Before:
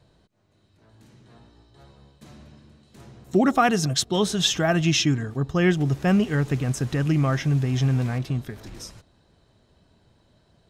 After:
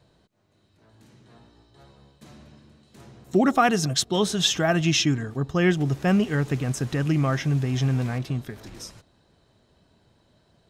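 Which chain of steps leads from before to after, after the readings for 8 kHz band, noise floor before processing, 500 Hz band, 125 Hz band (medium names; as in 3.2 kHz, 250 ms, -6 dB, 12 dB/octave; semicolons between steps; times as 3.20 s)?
0.0 dB, -63 dBFS, 0.0 dB, -1.5 dB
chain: bass shelf 86 Hz -6 dB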